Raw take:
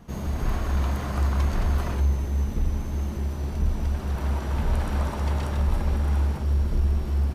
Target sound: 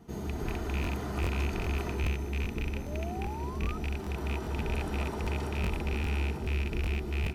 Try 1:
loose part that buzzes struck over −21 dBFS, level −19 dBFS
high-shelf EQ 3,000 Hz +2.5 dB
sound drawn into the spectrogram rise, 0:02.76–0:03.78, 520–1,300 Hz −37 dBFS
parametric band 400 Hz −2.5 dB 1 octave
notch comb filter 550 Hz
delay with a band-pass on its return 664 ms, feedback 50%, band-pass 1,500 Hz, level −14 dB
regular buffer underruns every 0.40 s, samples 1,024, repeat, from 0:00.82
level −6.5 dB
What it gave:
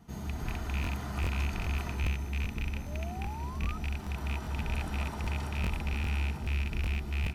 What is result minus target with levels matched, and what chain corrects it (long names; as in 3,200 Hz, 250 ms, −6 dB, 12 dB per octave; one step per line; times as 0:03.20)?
500 Hz band −7.0 dB
loose part that buzzes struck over −21 dBFS, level −19 dBFS
high-shelf EQ 3,000 Hz +2.5 dB
sound drawn into the spectrogram rise, 0:02.76–0:03.78, 520–1,300 Hz −37 dBFS
parametric band 400 Hz +8.5 dB 1 octave
notch comb filter 550 Hz
delay with a band-pass on its return 664 ms, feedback 50%, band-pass 1,500 Hz, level −14 dB
regular buffer underruns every 0.40 s, samples 1,024, repeat, from 0:00.82
level −6.5 dB